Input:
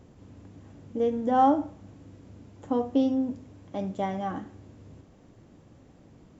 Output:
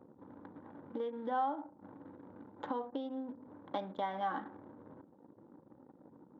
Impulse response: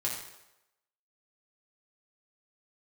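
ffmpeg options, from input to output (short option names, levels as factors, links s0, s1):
-af "acompressor=threshold=0.0141:ratio=16,anlmdn=0.00251,highpass=400,equalizer=f=410:t=q:w=4:g=-6,equalizer=f=650:t=q:w=4:g=-4,equalizer=f=930:t=q:w=4:g=6,equalizer=f=1500:t=q:w=4:g=5,equalizer=f=2600:t=q:w=4:g=-7,equalizer=f=3700:t=q:w=4:g=8,lowpass=f=4400:w=0.5412,lowpass=f=4400:w=1.3066,bandreject=f=690:w=12,volume=2.37"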